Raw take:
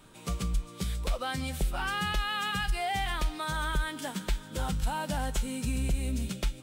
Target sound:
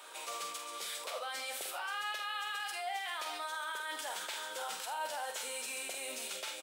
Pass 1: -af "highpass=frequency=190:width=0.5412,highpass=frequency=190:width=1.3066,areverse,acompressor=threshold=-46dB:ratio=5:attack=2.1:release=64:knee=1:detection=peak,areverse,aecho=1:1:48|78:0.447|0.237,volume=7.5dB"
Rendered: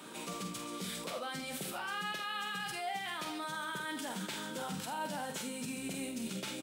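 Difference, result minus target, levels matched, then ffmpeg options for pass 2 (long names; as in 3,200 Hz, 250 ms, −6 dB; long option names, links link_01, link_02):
250 Hz band +20.0 dB
-af "highpass=frequency=540:width=0.5412,highpass=frequency=540:width=1.3066,areverse,acompressor=threshold=-46dB:ratio=5:attack=2.1:release=64:knee=1:detection=peak,areverse,aecho=1:1:48|78:0.447|0.237,volume=7.5dB"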